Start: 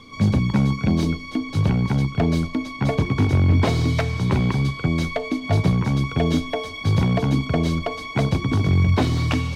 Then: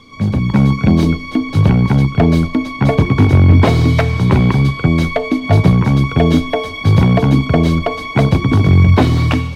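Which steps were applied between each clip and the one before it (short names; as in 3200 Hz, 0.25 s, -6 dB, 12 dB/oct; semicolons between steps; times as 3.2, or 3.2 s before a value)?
dynamic EQ 6300 Hz, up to -6 dB, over -49 dBFS, Q 0.74; AGC gain up to 9 dB; gain +1.5 dB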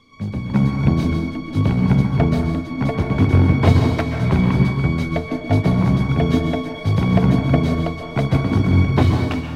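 reverb RT60 1.4 s, pre-delay 0.118 s, DRR 2.5 dB; upward expander 1.5:1, over -16 dBFS; gain -5 dB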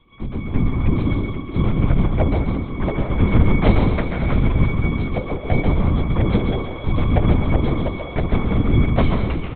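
LPC vocoder at 8 kHz whisper; on a send: echo 0.135 s -8.5 dB; on the sum: gain -1 dB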